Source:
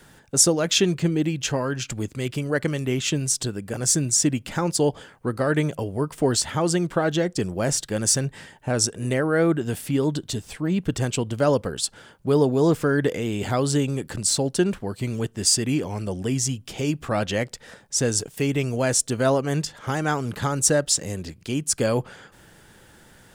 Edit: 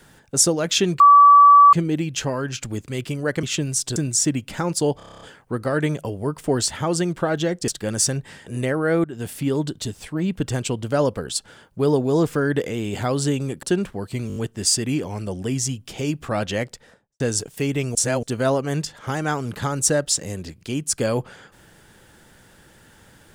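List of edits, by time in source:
0:01.00: insert tone 1,150 Hz −6.5 dBFS 0.73 s
0:02.70–0:02.97: remove
0:03.50–0:03.94: remove
0:04.95: stutter 0.03 s, 9 plays
0:07.42–0:07.76: remove
0:08.54–0:08.94: remove
0:09.52–0:09.80: fade in, from −14.5 dB
0:14.11–0:14.51: remove
0:15.16: stutter 0.02 s, 5 plays
0:17.43–0:18.00: fade out and dull
0:18.75–0:19.03: reverse

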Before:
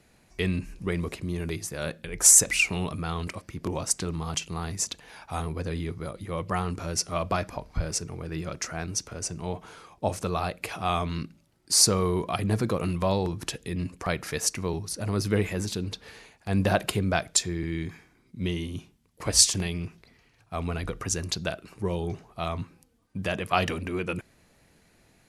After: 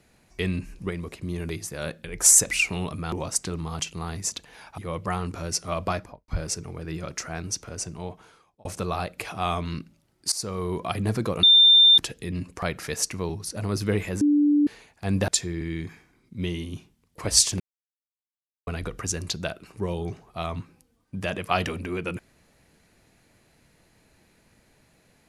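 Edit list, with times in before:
0:00.90–0:01.22: clip gain −4 dB
0:03.12–0:03.67: remove
0:05.33–0:06.22: remove
0:07.36–0:07.72: fade out and dull
0:09.27–0:10.09: fade out
0:11.76–0:12.28: fade in, from −19.5 dB
0:12.87–0:13.42: beep over 3,590 Hz −11 dBFS
0:15.65–0:16.11: beep over 293 Hz −16 dBFS
0:16.72–0:17.30: remove
0:19.62–0:20.69: silence

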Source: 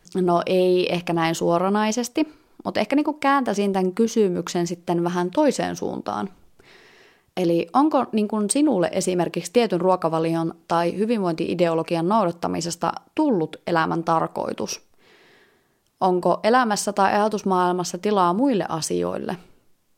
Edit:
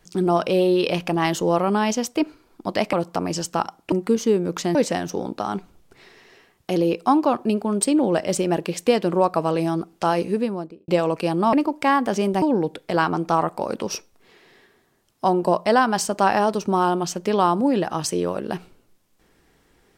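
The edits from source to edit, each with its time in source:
0:02.93–0:03.82: swap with 0:12.21–0:13.20
0:04.65–0:05.43: remove
0:10.96–0:11.56: fade out and dull

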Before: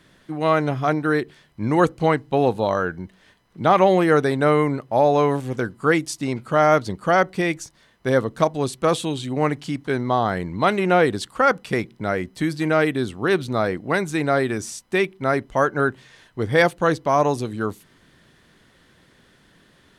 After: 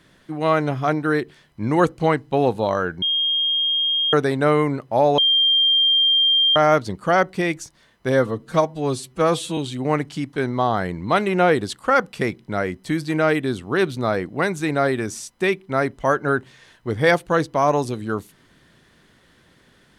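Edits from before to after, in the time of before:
0:03.02–0:04.13: beep over 3,230 Hz −17.5 dBFS
0:05.18–0:06.56: beep over 3,190 Hz −13.5 dBFS
0:08.12–0:09.09: time-stretch 1.5×

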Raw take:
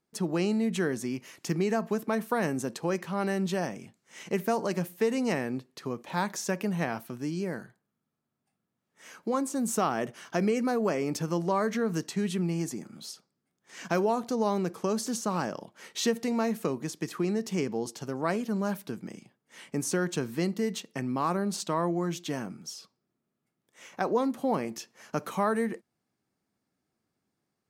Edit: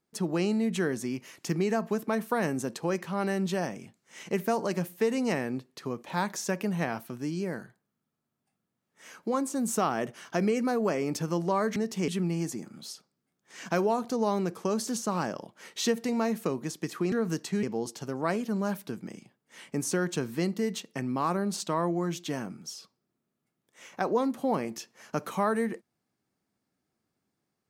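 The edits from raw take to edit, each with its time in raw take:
0:11.76–0:12.27: swap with 0:17.31–0:17.63

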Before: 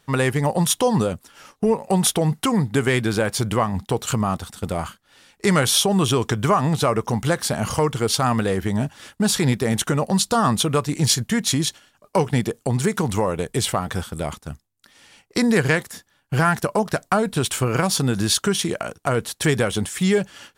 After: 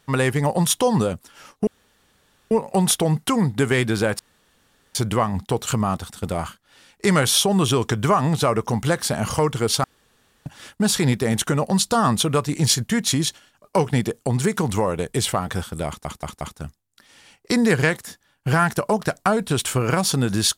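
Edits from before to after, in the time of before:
0:01.67: splice in room tone 0.84 s
0:03.35: splice in room tone 0.76 s
0:08.24–0:08.86: fill with room tone
0:14.27: stutter 0.18 s, 4 plays

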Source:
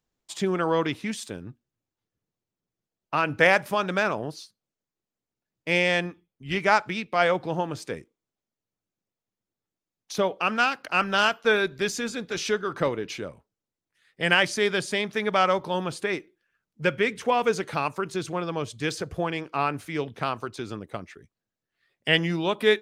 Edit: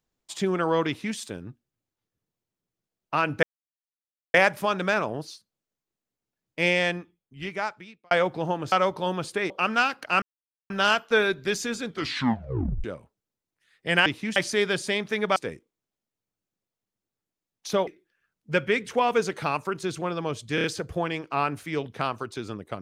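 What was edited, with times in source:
0:00.87–0:01.17: duplicate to 0:14.40
0:03.43: splice in silence 0.91 s
0:05.78–0:07.20: fade out
0:07.81–0:10.32: swap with 0:15.40–0:16.18
0:11.04: splice in silence 0.48 s
0:12.20: tape stop 0.98 s
0:18.86: stutter 0.03 s, 4 plays

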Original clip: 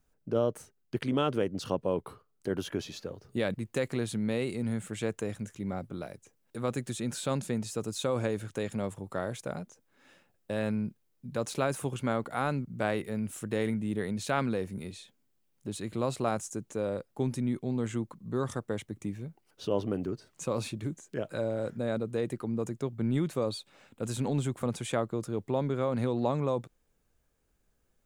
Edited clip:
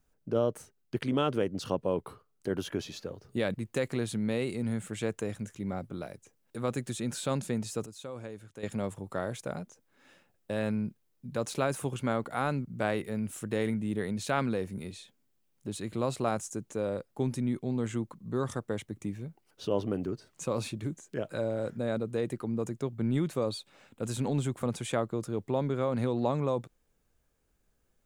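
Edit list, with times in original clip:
0:07.86–0:08.63: clip gain −11.5 dB

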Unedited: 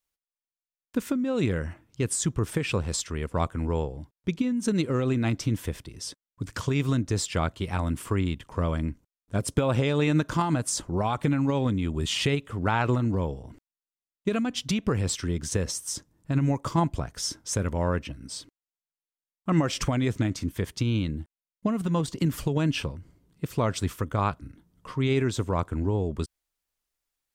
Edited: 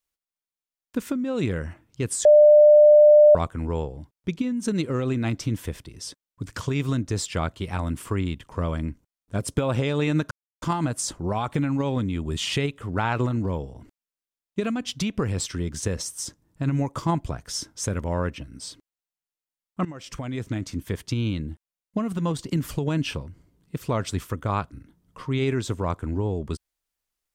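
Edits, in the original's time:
0:02.25–0:03.35: beep over 598 Hz −9 dBFS
0:10.31: splice in silence 0.31 s
0:19.54–0:20.56: fade in, from −18.5 dB

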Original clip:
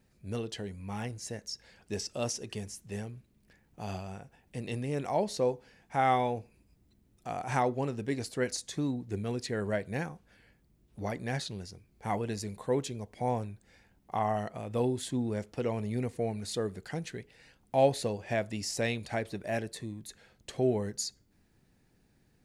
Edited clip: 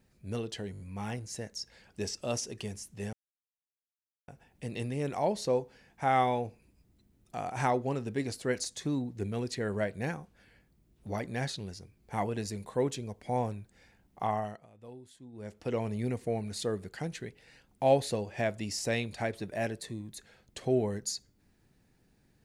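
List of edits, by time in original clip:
0:00.72: stutter 0.02 s, 5 plays
0:03.05–0:04.20: silence
0:14.18–0:15.65: duck −19 dB, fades 0.41 s

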